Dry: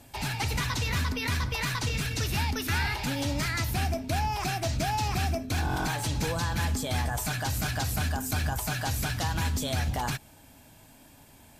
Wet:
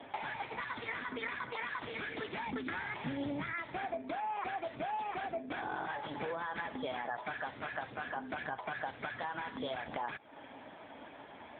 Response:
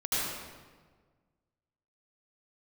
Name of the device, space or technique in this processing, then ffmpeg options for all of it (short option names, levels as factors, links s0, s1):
voicemail: -filter_complex "[0:a]bandreject=f=2700:w=5.8,asplit=3[s0][s1][s2];[s0]afade=t=out:st=2.45:d=0.02[s3];[s1]bass=f=250:g=14,treble=f=4000:g=6,afade=t=in:st=2.45:d=0.02,afade=t=out:st=3.51:d=0.02[s4];[s2]afade=t=in:st=3.51:d=0.02[s5];[s3][s4][s5]amix=inputs=3:normalize=0,highpass=370,lowpass=3000,acompressor=threshold=0.00447:ratio=6,volume=3.98" -ar 8000 -c:a libopencore_amrnb -b:a 6700